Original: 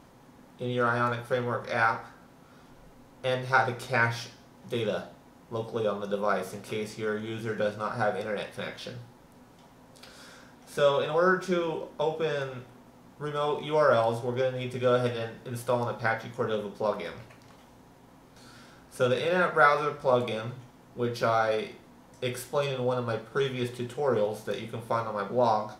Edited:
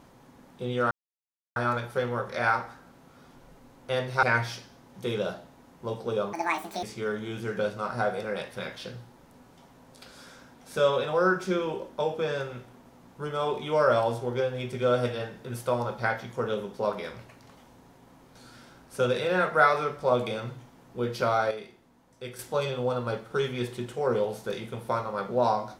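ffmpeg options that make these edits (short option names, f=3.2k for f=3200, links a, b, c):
-filter_complex "[0:a]asplit=7[a][b][c][d][e][f][g];[a]atrim=end=0.91,asetpts=PTS-STARTPTS,afade=t=out:st=0.906:d=0.004:c=hsin,apad=pad_dur=0.65[h];[b]atrim=start=0.91:end=3.582,asetpts=PTS-STARTPTS,afade=t=in:d=0.004:c=hsin[i];[c]atrim=start=3.908:end=6.014[j];[d]atrim=start=6.01:end=6.84,asetpts=PTS-STARTPTS,asetrate=73206,aresample=44100[k];[e]atrim=start=6.836:end=21.522[l];[f]atrim=start=21.518:end=22.402,asetpts=PTS-STARTPTS,volume=-8dB[m];[g]atrim=start=22.398[n];[h][i]concat=n=2:v=0:a=1[o];[o][j]acrossfade=d=0.004:c1=hsin:c2=hsin[p];[p][k]acrossfade=d=0.004:c1=hsin:c2=hsin[q];[q][l]acrossfade=d=0.004:c1=hsin:c2=hsin[r];[r][m]acrossfade=d=0.004:c1=hsin:c2=hsin[s];[s][n]acrossfade=d=0.004:c1=hsin:c2=hsin"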